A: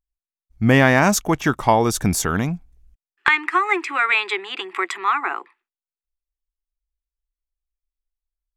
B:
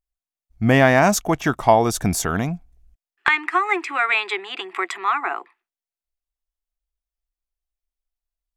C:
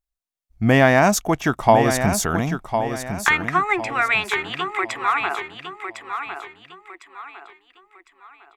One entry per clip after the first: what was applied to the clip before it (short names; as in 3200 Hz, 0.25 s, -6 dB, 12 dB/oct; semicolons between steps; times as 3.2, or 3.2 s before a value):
bell 690 Hz +8 dB 0.26 oct; gain -1.5 dB
feedback echo 1.055 s, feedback 35%, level -8 dB